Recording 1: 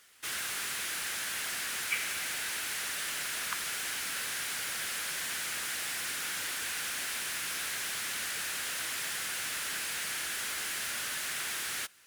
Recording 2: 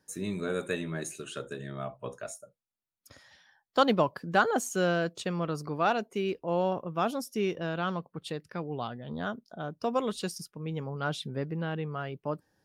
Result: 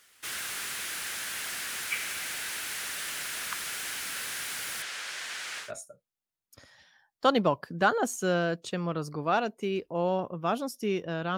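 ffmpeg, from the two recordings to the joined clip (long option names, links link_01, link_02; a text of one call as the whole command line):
ffmpeg -i cue0.wav -i cue1.wav -filter_complex "[0:a]asettb=1/sr,asplit=3[link_01][link_02][link_03];[link_01]atrim=end=4.824[link_04];[link_02]atrim=start=4.82:end=5.72,asetpts=PTS-STARTPTS,afade=type=in:duration=0.004:curve=qsin,afade=type=out:start_time=0.896:duration=0.004:curve=qsin,acrossover=split=390 7700:gain=0.251 1 0.126[link_05][link_06][link_07];[link_05][link_06][link_07]amix=inputs=3:normalize=0[link_08];[link_03]atrim=start=5.716[link_09];[link_04][link_08]acrossfade=duration=0.004:curve1=hsin:curve2=qsin[link_10];[link_10][link_09]acrossfade=duration=0.004:curve1=qsin:curve2=hsin,apad=whole_dur=11.37,atrim=end=11.37,atrim=end=5.72,asetpts=PTS-STARTPTS[link_11];[1:a]atrim=start=2.11:end=7.9,asetpts=PTS-STARTPTS[link_12];[link_11][link_12]acrossfade=duration=0.14:curve1=tri:curve2=tri" out.wav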